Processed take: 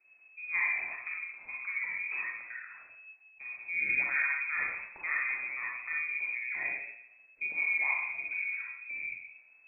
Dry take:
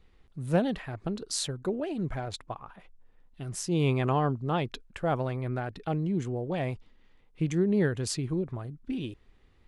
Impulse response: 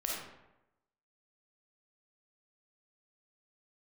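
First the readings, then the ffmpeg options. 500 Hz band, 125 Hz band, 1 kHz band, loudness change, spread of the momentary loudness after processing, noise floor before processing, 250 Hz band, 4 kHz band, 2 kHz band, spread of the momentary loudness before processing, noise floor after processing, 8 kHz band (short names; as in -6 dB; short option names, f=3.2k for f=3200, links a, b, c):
-27.5 dB, under -35 dB, -10.5 dB, -1.5 dB, 16 LU, -61 dBFS, under -30 dB, under -40 dB, +13.0 dB, 14 LU, -61 dBFS, under -40 dB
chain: -filter_complex "[1:a]atrim=start_sample=2205,asetrate=52920,aresample=44100[a];[0:a][a]afir=irnorm=-1:irlink=0,lowpass=f=2.2k:t=q:w=0.5098,lowpass=f=2.2k:t=q:w=0.6013,lowpass=f=2.2k:t=q:w=0.9,lowpass=f=2.2k:t=q:w=2.563,afreqshift=-2600,volume=-6dB"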